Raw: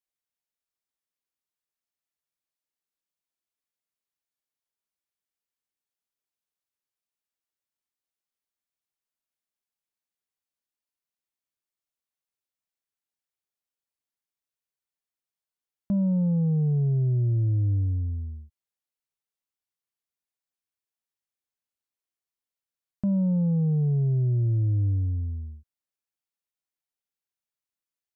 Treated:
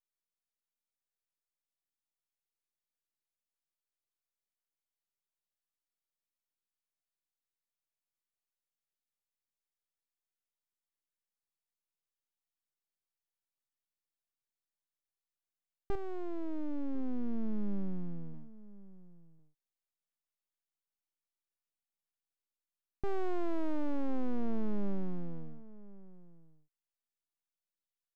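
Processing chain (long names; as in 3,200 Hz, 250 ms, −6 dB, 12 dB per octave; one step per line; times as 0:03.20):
0:15.95–0:18.34: parametric band 240 Hz −9 dB 1.4 octaves
full-wave rectification
slap from a distant wall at 180 metres, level −18 dB
level −5 dB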